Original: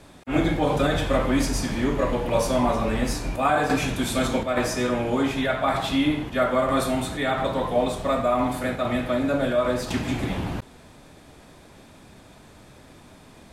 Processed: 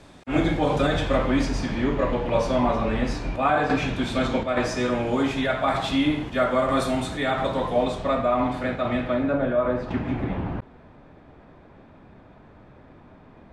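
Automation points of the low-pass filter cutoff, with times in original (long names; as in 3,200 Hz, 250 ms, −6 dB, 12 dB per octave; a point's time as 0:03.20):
0:00.80 7,600 Hz
0:01.58 4,000 Hz
0:04.25 4,000 Hz
0:05.17 7,900 Hz
0:07.68 7,900 Hz
0:08.21 3,800 Hz
0:08.99 3,800 Hz
0:09.46 1,700 Hz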